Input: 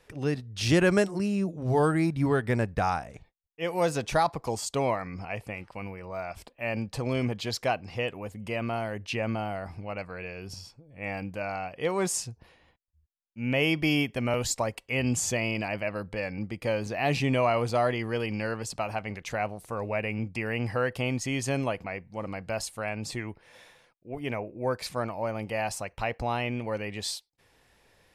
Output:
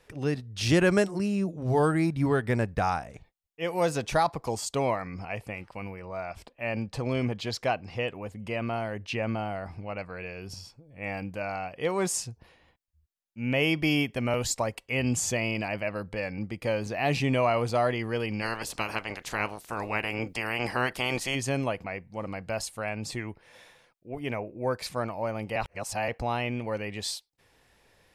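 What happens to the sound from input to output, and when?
6.01–10.14 s: treble shelf 9.1 kHz -9 dB
18.41–21.34 s: spectral peaks clipped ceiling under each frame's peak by 20 dB
25.56–26.08 s: reverse

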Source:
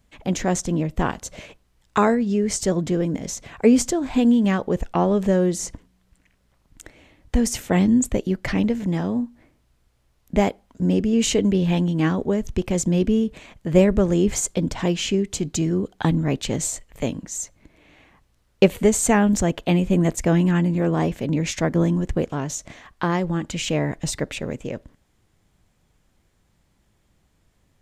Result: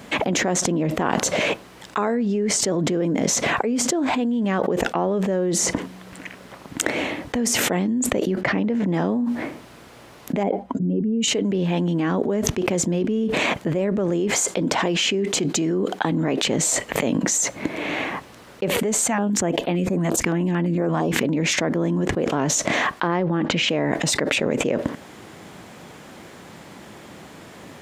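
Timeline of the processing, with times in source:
8.41–8.94 s: low-pass 2.9 kHz 6 dB/octave
10.43–11.28 s: spectral contrast enhancement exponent 1.6
14.20–16.47 s: bass shelf 160 Hz -8.5 dB
19.07–21.25 s: step-sequenced notch 8.8 Hz 410–6900 Hz
23.07–23.69 s: distance through air 150 m
whole clip: high-pass 230 Hz 12 dB/octave; treble shelf 3.8 kHz -9.5 dB; level flattener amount 100%; trim -10.5 dB

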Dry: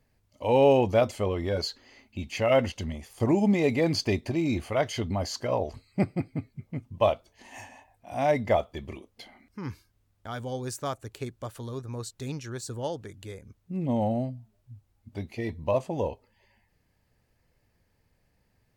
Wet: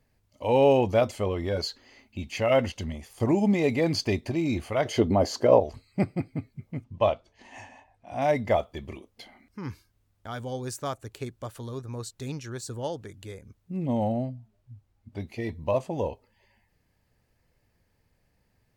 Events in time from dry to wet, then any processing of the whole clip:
4.85–5.60 s: peaking EQ 420 Hz +12 dB 2.2 oct
6.84–8.22 s: distance through air 72 m
14.12–15.20 s: treble shelf 6.3 kHz -8 dB

